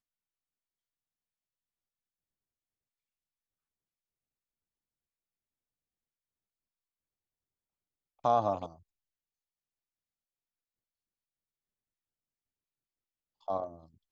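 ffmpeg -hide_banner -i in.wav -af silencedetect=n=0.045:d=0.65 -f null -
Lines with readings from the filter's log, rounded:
silence_start: 0.00
silence_end: 8.25 | silence_duration: 8.25
silence_start: 8.64
silence_end: 13.48 | silence_duration: 4.84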